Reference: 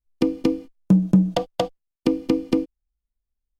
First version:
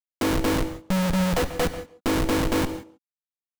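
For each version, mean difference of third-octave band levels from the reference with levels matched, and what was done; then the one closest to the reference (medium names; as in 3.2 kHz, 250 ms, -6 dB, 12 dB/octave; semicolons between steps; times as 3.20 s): 18.0 dB: dynamic bell 110 Hz, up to +4 dB, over -31 dBFS, Q 0.95; Schmitt trigger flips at -33.5 dBFS; speakerphone echo 140 ms, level -8 dB; gated-style reverb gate 200 ms flat, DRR 11 dB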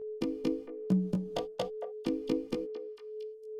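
3.0 dB: compression 2:1, threshold -19 dBFS, peak gain reduction 5 dB; whistle 430 Hz -29 dBFS; chorus 1.1 Hz, delay 16 ms, depth 2.9 ms; repeats whose band climbs or falls 227 ms, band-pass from 560 Hz, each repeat 1.4 oct, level -6 dB; trim -7 dB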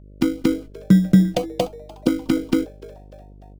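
5.5 dB: in parallel at -8 dB: sample-and-hold 25×; on the sum: mains buzz 50 Hz, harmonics 12, -44 dBFS -6 dB/octave; LFO notch saw up 4.8 Hz 430–2100 Hz; frequency-shifting echo 297 ms, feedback 47%, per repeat +140 Hz, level -21.5 dB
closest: second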